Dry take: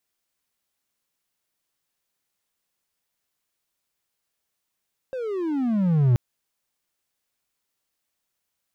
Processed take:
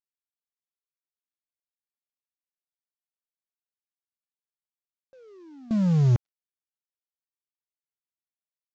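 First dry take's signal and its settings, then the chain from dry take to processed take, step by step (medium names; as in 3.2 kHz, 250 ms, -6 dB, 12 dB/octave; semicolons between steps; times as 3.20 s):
gliding synth tone triangle, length 1.03 s, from 536 Hz, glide -26.5 st, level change +13.5 dB, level -12 dB
CVSD coder 32 kbps; gate with hold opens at -18 dBFS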